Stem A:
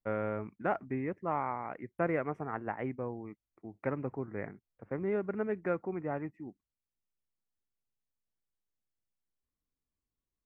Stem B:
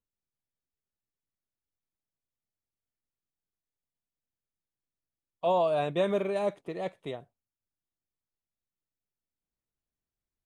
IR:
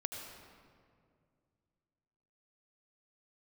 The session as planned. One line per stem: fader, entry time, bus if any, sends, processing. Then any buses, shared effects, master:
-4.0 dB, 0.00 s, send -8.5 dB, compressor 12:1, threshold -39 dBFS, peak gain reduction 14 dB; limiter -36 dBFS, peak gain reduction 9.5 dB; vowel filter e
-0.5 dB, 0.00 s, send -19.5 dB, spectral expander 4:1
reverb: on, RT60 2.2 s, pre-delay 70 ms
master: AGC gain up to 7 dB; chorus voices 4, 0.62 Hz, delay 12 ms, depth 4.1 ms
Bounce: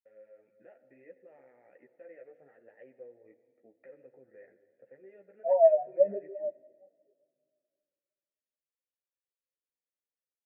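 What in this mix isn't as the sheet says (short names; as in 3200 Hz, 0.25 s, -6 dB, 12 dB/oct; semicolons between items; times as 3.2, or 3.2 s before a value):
stem A: send -8.5 dB -> -0.5 dB; reverb return -7.0 dB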